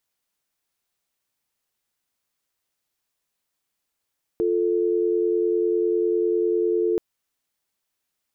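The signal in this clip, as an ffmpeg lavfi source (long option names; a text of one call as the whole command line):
ffmpeg -f lavfi -i "aevalsrc='0.0841*(sin(2*PI*350*t)+sin(2*PI*440*t))':duration=2.58:sample_rate=44100" out.wav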